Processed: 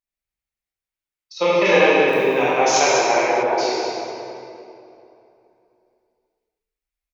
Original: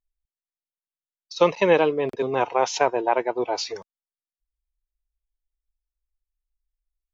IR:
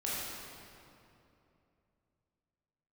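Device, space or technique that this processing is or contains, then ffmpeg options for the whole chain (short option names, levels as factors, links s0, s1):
PA in a hall: -filter_complex "[0:a]highpass=f=120:p=1,equalizer=f=2200:t=o:w=0.57:g=6.5,aecho=1:1:193:0.355[s0];[1:a]atrim=start_sample=2205[s1];[s0][s1]afir=irnorm=-1:irlink=0,asplit=3[s2][s3][s4];[s2]afade=t=out:st=1.64:d=0.02[s5];[s3]aemphasis=mode=production:type=75fm,afade=t=in:st=1.64:d=0.02,afade=t=out:st=3.42:d=0.02[s6];[s4]afade=t=in:st=3.42:d=0.02[s7];[s5][s6][s7]amix=inputs=3:normalize=0,bandreject=f=50:t=h:w=6,bandreject=f=100:t=h:w=6,bandreject=f=150:t=h:w=6,bandreject=f=200:t=h:w=6,bandreject=f=250:t=h:w=6,volume=0.891"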